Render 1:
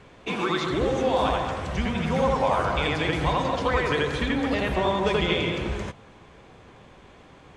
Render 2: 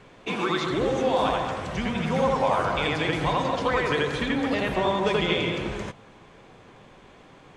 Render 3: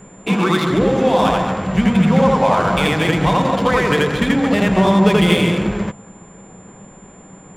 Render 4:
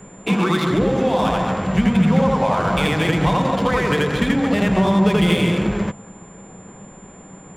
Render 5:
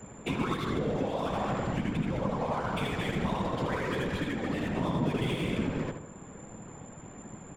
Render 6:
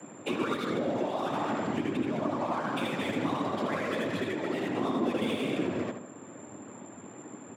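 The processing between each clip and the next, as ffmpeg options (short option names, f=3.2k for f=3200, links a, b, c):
-af "equalizer=f=66:t=o:w=0.55:g=-13"
-af "adynamicsmooth=sensitivity=6:basefreq=1.8k,aeval=exprs='val(0)+0.00178*sin(2*PI*7200*n/s)':c=same,equalizer=f=190:w=4.5:g=13,volume=7.5dB"
-filter_complex "[0:a]acrossover=split=170[a][b];[b]acompressor=threshold=-19dB:ratio=2[c];[a][c]amix=inputs=2:normalize=0"
-filter_complex "[0:a]alimiter=limit=-16.5dB:level=0:latency=1:release=464,afftfilt=real='hypot(re,im)*cos(2*PI*random(0))':imag='hypot(re,im)*sin(2*PI*random(1))':win_size=512:overlap=0.75,asplit=2[a][b];[b]adelay=75,lowpass=f=2.8k:p=1,volume=-7.5dB,asplit=2[c][d];[d]adelay=75,lowpass=f=2.8k:p=1,volume=0.46,asplit=2[e][f];[f]adelay=75,lowpass=f=2.8k:p=1,volume=0.46,asplit=2[g][h];[h]adelay=75,lowpass=f=2.8k:p=1,volume=0.46,asplit=2[i][j];[j]adelay=75,lowpass=f=2.8k:p=1,volume=0.46[k];[a][c][e][g][i][k]amix=inputs=6:normalize=0"
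-af "afreqshift=92"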